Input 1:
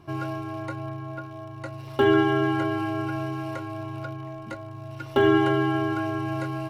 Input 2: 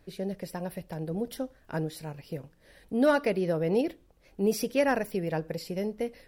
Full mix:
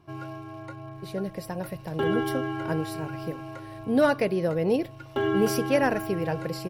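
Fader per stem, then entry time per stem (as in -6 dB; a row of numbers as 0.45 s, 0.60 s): -7.0 dB, +2.0 dB; 0.00 s, 0.95 s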